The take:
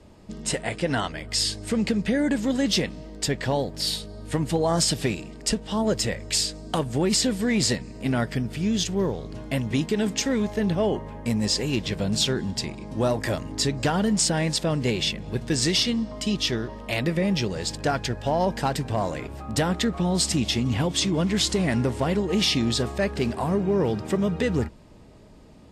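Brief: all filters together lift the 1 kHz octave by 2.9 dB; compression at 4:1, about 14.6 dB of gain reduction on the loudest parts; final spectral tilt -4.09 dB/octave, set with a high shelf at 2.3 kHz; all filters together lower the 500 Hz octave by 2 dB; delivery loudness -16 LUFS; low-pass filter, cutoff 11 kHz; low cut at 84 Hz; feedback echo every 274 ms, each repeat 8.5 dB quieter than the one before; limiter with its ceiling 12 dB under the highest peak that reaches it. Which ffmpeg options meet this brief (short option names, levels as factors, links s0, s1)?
-af "highpass=84,lowpass=11000,equalizer=f=500:t=o:g=-4,equalizer=f=1000:t=o:g=4.5,highshelf=f=2300:g=5,acompressor=threshold=0.02:ratio=4,alimiter=level_in=1.78:limit=0.0631:level=0:latency=1,volume=0.562,aecho=1:1:274|548|822|1096:0.376|0.143|0.0543|0.0206,volume=11.9"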